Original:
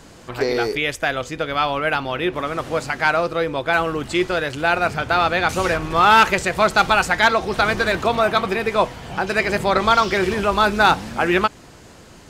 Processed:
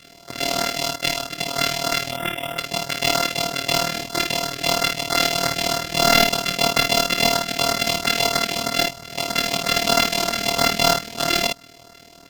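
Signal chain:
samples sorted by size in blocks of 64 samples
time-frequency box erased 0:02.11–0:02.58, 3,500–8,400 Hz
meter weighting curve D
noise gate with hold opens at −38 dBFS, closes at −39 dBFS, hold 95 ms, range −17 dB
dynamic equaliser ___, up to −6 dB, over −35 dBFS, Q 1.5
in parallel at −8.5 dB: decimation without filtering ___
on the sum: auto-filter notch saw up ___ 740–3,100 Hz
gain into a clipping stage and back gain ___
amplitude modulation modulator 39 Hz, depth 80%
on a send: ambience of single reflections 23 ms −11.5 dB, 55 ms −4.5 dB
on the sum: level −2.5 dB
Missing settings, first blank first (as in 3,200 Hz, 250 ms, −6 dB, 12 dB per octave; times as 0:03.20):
400 Hz, 20×, 3.1 Hz, 2 dB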